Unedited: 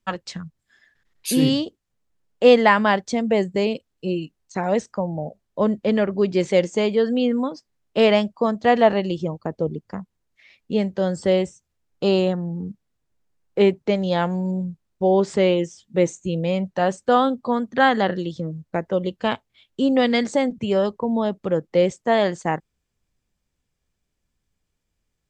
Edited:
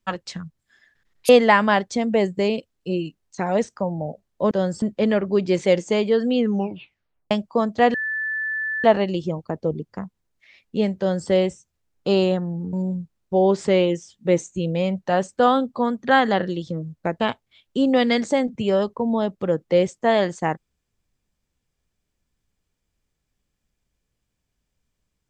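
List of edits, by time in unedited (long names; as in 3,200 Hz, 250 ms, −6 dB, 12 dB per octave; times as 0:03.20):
0:01.29–0:02.46: remove
0:07.25: tape stop 0.92 s
0:08.80: insert tone 1,750 Hz −23 dBFS 0.90 s
0:10.94–0:11.25: duplicate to 0:05.68
0:12.69–0:14.42: remove
0:18.89–0:19.23: remove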